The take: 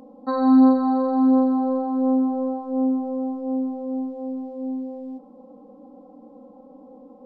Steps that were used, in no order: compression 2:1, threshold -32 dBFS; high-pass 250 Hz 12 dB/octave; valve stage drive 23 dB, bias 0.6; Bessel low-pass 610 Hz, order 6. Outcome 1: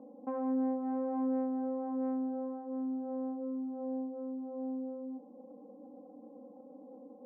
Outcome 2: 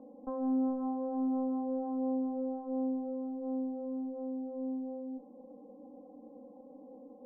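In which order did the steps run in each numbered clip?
compression > Bessel low-pass > valve stage > high-pass; high-pass > compression > valve stage > Bessel low-pass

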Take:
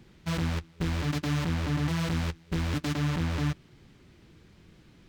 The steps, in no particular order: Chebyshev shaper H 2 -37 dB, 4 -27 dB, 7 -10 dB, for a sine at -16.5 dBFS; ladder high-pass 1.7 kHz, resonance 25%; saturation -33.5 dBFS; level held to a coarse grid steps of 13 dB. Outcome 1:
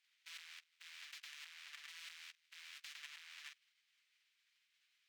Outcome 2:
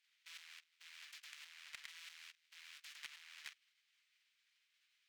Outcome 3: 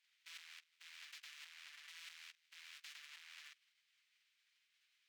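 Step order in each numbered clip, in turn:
level held to a coarse grid > ladder high-pass > Chebyshev shaper > saturation; level held to a coarse grid > Chebyshev shaper > ladder high-pass > saturation; level held to a coarse grid > saturation > ladder high-pass > Chebyshev shaper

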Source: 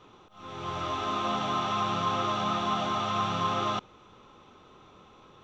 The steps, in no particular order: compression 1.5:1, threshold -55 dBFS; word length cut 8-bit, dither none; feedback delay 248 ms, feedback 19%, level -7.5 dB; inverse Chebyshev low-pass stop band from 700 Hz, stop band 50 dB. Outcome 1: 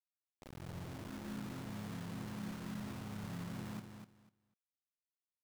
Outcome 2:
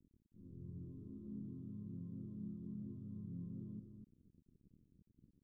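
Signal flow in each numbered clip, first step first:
inverse Chebyshev low-pass > compression > word length cut > feedback delay; compression > feedback delay > word length cut > inverse Chebyshev low-pass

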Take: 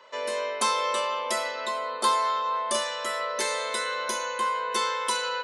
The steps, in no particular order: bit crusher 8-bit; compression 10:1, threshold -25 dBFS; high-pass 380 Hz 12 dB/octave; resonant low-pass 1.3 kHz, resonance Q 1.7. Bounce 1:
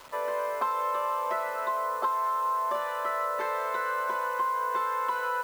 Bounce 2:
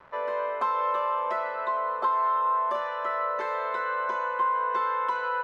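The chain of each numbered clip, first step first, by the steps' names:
resonant low-pass > compression > high-pass > bit crusher; high-pass > compression > bit crusher > resonant low-pass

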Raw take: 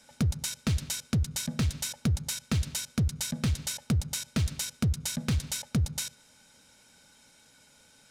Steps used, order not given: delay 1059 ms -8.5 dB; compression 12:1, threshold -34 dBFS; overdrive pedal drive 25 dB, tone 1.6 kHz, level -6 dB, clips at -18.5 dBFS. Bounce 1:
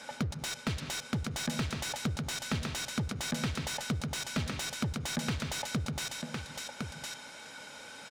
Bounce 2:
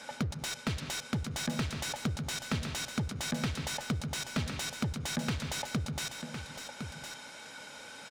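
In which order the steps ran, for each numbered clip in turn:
compression > delay > overdrive pedal; compression > overdrive pedal > delay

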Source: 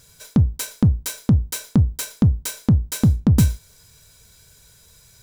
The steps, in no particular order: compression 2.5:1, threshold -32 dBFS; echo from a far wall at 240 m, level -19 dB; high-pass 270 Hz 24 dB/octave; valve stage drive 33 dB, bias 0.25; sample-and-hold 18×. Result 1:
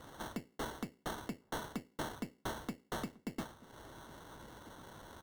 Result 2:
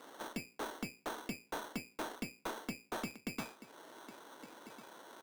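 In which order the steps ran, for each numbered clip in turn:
compression > high-pass > sample-and-hold > valve stage > echo from a far wall; compression > echo from a far wall > sample-and-hold > high-pass > valve stage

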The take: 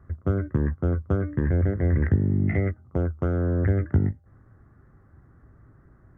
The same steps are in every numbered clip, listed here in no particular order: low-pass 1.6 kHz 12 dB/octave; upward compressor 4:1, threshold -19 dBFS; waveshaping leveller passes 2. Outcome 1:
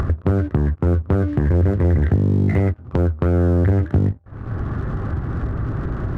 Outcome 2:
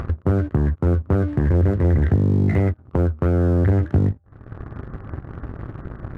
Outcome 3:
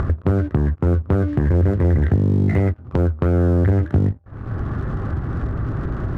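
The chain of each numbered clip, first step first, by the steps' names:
low-pass > upward compressor > waveshaping leveller; low-pass > waveshaping leveller > upward compressor; upward compressor > low-pass > waveshaping leveller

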